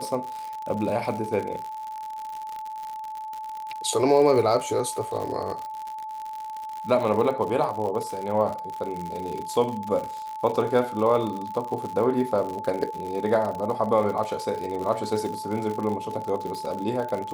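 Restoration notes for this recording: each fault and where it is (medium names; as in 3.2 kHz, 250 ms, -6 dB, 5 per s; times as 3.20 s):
crackle 90 per s -30 dBFS
whine 870 Hz -32 dBFS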